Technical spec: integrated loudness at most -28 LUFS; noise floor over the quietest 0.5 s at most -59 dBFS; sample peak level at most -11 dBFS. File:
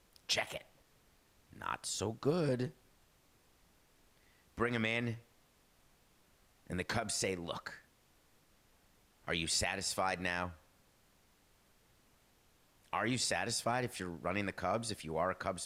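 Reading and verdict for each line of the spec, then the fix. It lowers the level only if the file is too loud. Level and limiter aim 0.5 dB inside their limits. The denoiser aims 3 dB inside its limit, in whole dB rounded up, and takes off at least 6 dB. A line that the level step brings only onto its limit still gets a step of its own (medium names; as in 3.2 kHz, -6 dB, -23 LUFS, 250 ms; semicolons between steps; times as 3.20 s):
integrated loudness -36.5 LUFS: pass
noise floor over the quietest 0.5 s -69 dBFS: pass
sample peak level -21.0 dBFS: pass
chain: none needed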